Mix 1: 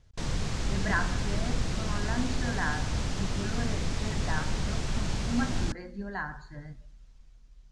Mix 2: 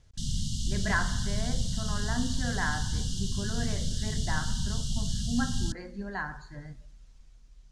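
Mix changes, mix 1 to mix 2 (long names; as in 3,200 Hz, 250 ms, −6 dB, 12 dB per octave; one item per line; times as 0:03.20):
background: add linear-phase brick-wall band-stop 260–2,800 Hz
master: add high-shelf EQ 5,600 Hz +7 dB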